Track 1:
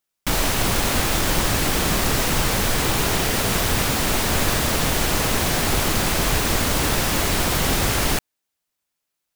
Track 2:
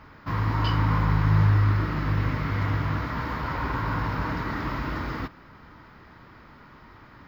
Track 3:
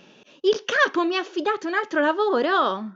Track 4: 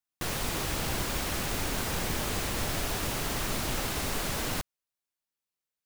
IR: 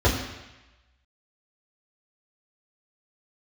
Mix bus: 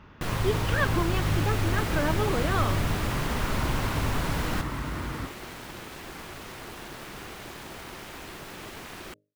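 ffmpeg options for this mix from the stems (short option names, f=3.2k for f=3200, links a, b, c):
-filter_complex "[0:a]lowshelf=f=350:g=-8.5,bandreject=f=50:t=h:w=6,bandreject=f=100:t=h:w=6,bandreject=f=150:t=h:w=6,bandreject=f=200:t=h:w=6,bandreject=f=250:t=h:w=6,aeval=exprs='val(0)*sin(2*PI*360*n/s)':c=same,adelay=950,volume=-14dB[a];[1:a]acompressor=threshold=-25dB:ratio=6,volume=-4.5dB[b];[2:a]volume=-8.5dB[c];[3:a]volume=1dB[d];[a][b][c][d]amix=inputs=4:normalize=0,bass=f=250:g=4,treble=f=4k:g=-8"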